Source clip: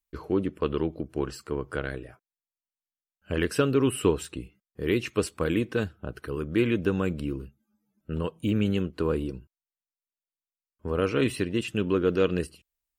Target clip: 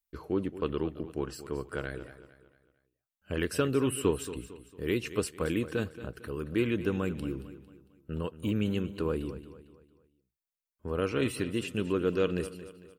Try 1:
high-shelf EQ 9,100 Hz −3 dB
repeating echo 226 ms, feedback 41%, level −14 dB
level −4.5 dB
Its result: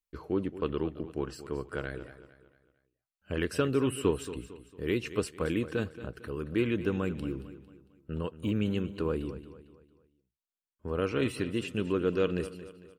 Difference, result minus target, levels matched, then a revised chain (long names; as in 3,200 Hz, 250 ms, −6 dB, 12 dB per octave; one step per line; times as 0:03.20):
8,000 Hz band −4.0 dB
high-shelf EQ 9,100 Hz +6.5 dB
repeating echo 226 ms, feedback 41%, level −14 dB
level −4.5 dB